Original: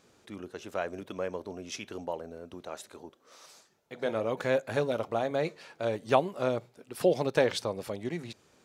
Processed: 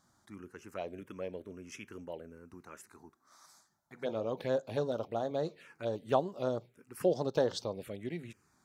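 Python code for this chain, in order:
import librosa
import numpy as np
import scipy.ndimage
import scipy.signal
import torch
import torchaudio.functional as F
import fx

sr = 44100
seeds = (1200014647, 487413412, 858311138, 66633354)

y = fx.env_phaser(x, sr, low_hz=440.0, high_hz=2300.0, full_db=-25.5)
y = y * librosa.db_to_amplitude(-3.5)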